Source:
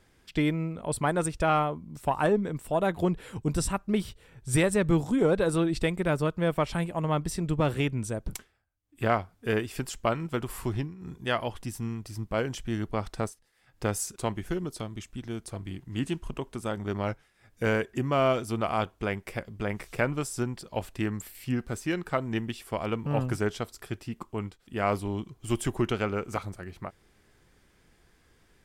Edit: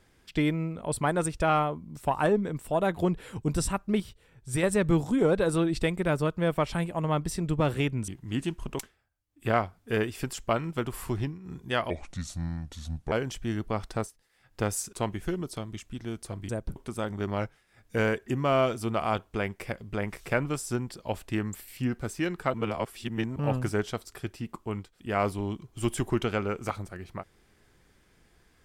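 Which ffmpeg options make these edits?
-filter_complex "[0:a]asplit=11[s0][s1][s2][s3][s4][s5][s6][s7][s8][s9][s10];[s0]atrim=end=4.002[s11];[s1]atrim=start=3.998:end=4.632,asetpts=PTS-STARTPTS,volume=0.562[s12];[s2]atrim=start=4.628:end=8.082[s13];[s3]atrim=start=15.718:end=16.432[s14];[s4]atrim=start=8.348:end=11.464[s15];[s5]atrim=start=11.46:end=12.35,asetpts=PTS-STARTPTS,asetrate=32193,aresample=44100[s16];[s6]atrim=start=12.346:end=15.722[s17];[s7]atrim=start=8.078:end=8.352[s18];[s8]atrim=start=16.428:end=22.212[s19];[s9]atrim=start=22.208:end=23.032,asetpts=PTS-STARTPTS,areverse[s20];[s10]atrim=start=23.028[s21];[s11][s12]acrossfade=d=0.004:c1=hsin:c2=hsin[s22];[s22][s13]acrossfade=d=0.004:c1=hsin:c2=hsin[s23];[s23][s14]acrossfade=d=0.004:c1=hsin:c2=hsin[s24];[s24][s15]acrossfade=d=0.004:c1=hsin:c2=hsin[s25];[s25][s16]acrossfade=d=0.004:c1=hsin:c2=hsin[s26];[s26][s17]acrossfade=d=0.004:c1=hsin:c2=hsin[s27];[s27][s18]acrossfade=d=0.004:c1=hsin:c2=hsin[s28];[s28][s19]acrossfade=d=0.004:c1=hsin:c2=hsin[s29];[s29][s20]acrossfade=d=0.004:c1=hsin:c2=hsin[s30];[s30][s21]acrossfade=d=0.004:c1=hsin:c2=hsin"

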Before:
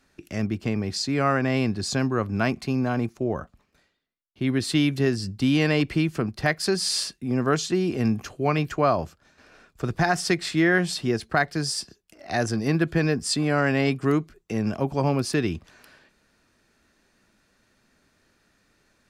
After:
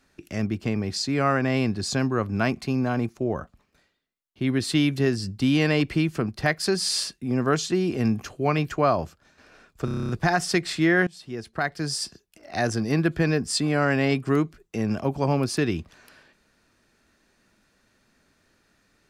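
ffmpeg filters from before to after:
-filter_complex "[0:a]asplit=10[s0][s1][s2][s3][s4][s5][s6][s7][s8][s9];[s0]atrim=end=9.882[s10];[s1]atrim=start=9.848:end=9.882[s11];[s2]atrim=start=9.848:end=9.882[s12];[s3]atrim=start=9.848:end=9.882[s13];[s4]atrim=start=9.848:end=9.882[s14];[s5]atrim=start=9.848:end=9.882[s15];[s6]atrim=start=9.848:end=9.882[s16];[s7]atrim=start=9.848:end=9.882[s17];[s8]atrim=start=9.848:end=10.83,asetpts=PTS-STARTPTS,afade=t=out:st=0.978:d=0.004:c=hsin:silence=0.0668344[s18];[s9]atrim=start=10.83,asetpts=PTS-STARTPTS,afade=t=in:d=0.97:silence=0.0668344[s19];[s10][s11]acrossfade=d=0.004:c1=hsin:c2=hsin[s20];[s20][s12]acrossfade=d=0.004:c1=hsin:c2=hsin[s21];[s21][s13]acrossfade=d=0.004:c1=hsin:c2=hsin[s22];[s22][s14]acrossfade=d=0.004:c1=hsin:c2=hsin[s23];[s23][s15]acrossfade=d=0.004:c1=hsin:c2=hsin[s24];[s24][s16]acrossfade=d=0.004:c1=hsin:c2=hsin[s25];[s25][s17]acrossfade=d=0.004:c1=hsin:c2=hsin[s26];[s18][s19]concat=n=2:v=0:a=1[s27];[s26][s27]acrossfade=d=0.004:c1=hsin:c2=hsin"

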